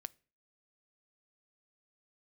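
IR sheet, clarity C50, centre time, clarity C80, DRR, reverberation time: 26.5 dB, 1 ms, 31.5 dB, 17.0 dB, 0.40 s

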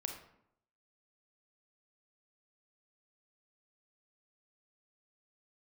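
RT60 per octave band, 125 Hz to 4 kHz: 0.80 s, 0.80 s, 0.75 s, 0.75 s, 0.60 s, 0.45 s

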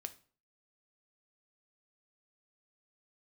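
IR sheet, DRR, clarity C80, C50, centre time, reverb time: 8.5 dB, 21.5 dB, 16.5 dB, 4 ms, 0.45 s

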